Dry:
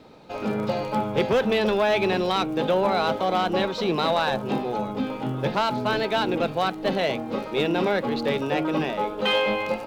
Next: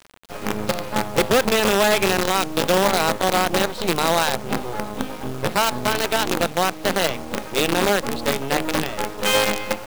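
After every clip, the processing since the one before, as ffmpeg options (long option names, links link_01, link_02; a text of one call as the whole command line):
ffmpeg -i in.wav -af "acrusher=bits=4:dc=4:mix=0:aa=0.000001,volume=3dB" out.wav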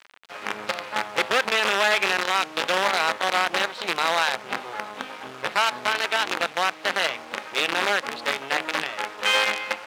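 ffmpeg -i in.wav -af "bandpass=frequency=2000:width_type=q:width=0.82:csg=0,volume=2dB" out.wav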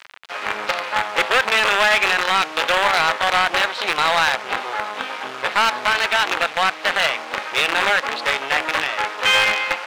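ffmpeg -i in.wav -filter_complex "[0:a]asplit=2[link_01][link_02];[link_02]highpass=frequency=720:poles=1,volume=14dB,asoftclip=type=tanh:threshold=-8dB[link_03];[link_01][link_03]amix=inputs=2:normalize=0,lowpass=frequency=5200:poles=1,volume=-6dB,volume=1.5dB" out.wav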